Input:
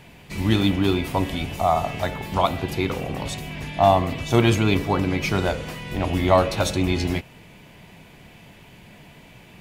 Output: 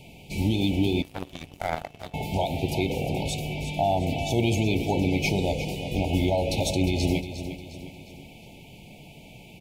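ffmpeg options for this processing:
-filter_complex "[0:a]alimiter=limit=-13.5dB:level=0:latency=1:release=126,asuperstop=centerf=1400:order=20:qfactor=1.1,aecho=1:1:356|712|1068|1424|1780:0.282|0.127|0.0571|0.0257|0.0116,asettb=1/sr,asplit=3[a][b][c];[a]atrim=end=1.024[d];[b]atrim=start=1.02:end=2.14,asetpts=PTS-STARTPTS,afade=t=in:d=0.004:c=qsin,afade=t=out:st=1.116:d=0.004:c=qsin,aeval=exprs='0.266*(cos(1*acos(clip(val(0)/0.266,-1,1)))-cos(1*PI/2))+0.0841*(cos(3*acos(clip(val(0)/0.266,-1,1)))-cos(3*PI/2))':c=same[e];[c]atrim=start=2.136[f];[d][e]acrossfade=d=0.004:c1=hsin:c2=qsin[g];[g][f]acrossfade=d=0.004:c1=qsin:c2=hsin"

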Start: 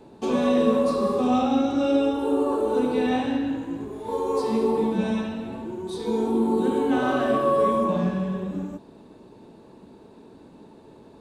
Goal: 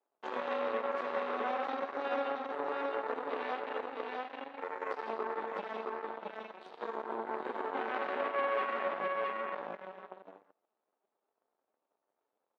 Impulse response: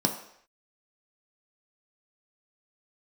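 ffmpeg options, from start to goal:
-af "aeval=exprs='0.398*(cos(1*acos(clip(val(0)/0.398,-1,1)))-cos(1*PI/2))+0.02*(cos(6*acos(clip(val(0)/0.398,-1,1)))-cos(6*PI/2))+0.0562*(cos(7*acos(clip(val(0)/0.398,-1,1)))-cos(7*PI/2))':c=same,aecho=1:1:592:0.631,atempo=0.89,acompressor=threshold=-36dB:ratio=2,asuperpass=centerf=1200:order=4:qfactor=0.52,volume=1.5dB"

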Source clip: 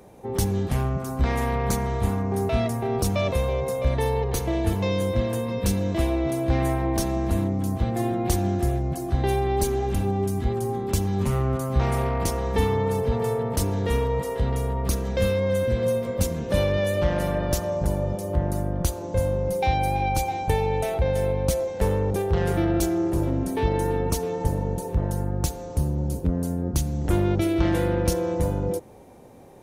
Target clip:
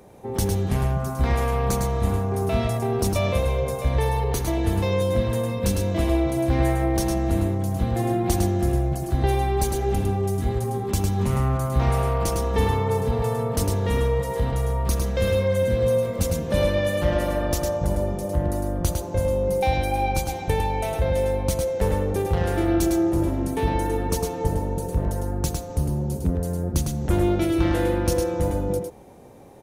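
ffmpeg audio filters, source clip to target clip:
-af "aecho=1:1:105:0.596"

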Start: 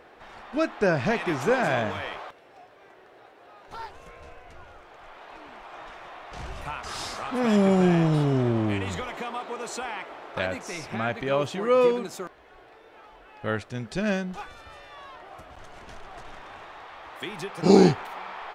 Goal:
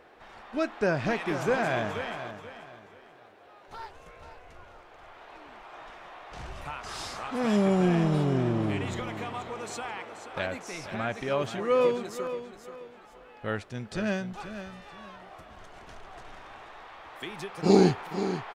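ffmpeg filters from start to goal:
-af "aecho=1:1:482|964|1446:0.282|0.0846|0.0254,volume=-3.5dB"

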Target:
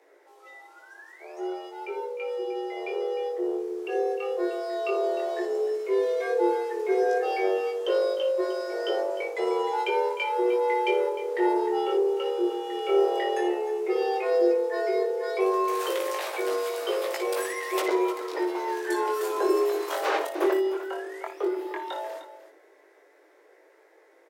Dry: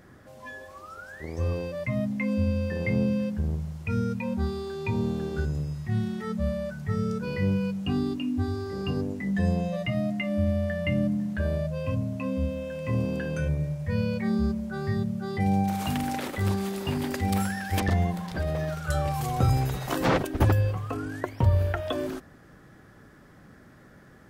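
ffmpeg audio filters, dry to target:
-filter_complex "[0:a]dynaudnorm=f=840:g=11:m=11.5dB,asplit=2[a][b];[b]asoftclip=type=tanh:threshold=-18.5dB,volume=-5dB[c];[a][c]amix=inputs=2:normalize=0,afreqshift=280,flanger=delay=17:depth=5.9:speed=0.12,asplit=2[d][e];[e]aecho=0:1:58|305:0.299|0.211[f];[d][f]amix=inputs=2:normalize=0,volume=-7.5dB"

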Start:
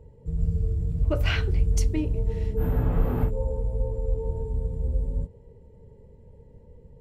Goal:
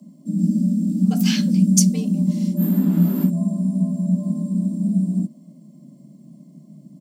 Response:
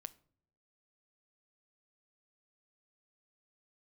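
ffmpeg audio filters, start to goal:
-af "firequalizer=gain_entry='entry(110,0);entry(290,-15);entry(2100,-8);entry(4700,11);entry(6700,13)':delay=0.05:min_phase=1,afreqshift=140,volume=5.5dB"

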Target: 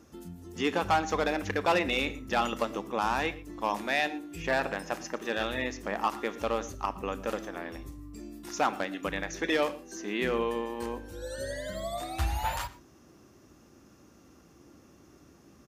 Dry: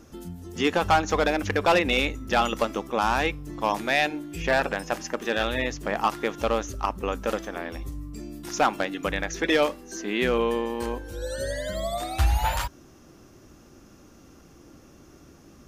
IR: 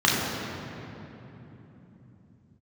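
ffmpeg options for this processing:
-filter_complex "[0:a]highpass=59,aecho=1:1:115:0.0794,asplit=2[a][b];[1:a]atrim=start_sample=2205,atrim=end_sample=6174[c];[b][c]afir=irnorm=-1:irlink=0,volume=-29.5dB[d];[a][d]amix=inputs=2:normalize=0,volume=-6dB"

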